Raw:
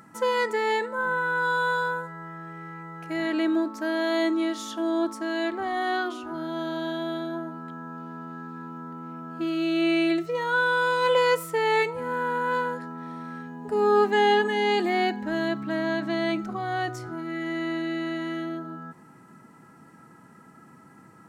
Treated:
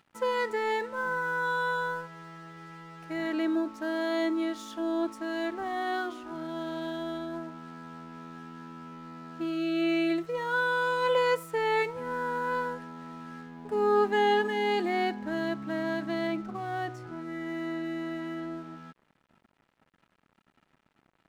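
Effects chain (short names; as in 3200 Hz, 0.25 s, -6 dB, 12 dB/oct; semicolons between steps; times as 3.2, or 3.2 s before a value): high shelf 3300 Hz -4 dB, from 16.27 s -11.5 dB; crossover distortion -48.5 dBFS; gain -3.5 dB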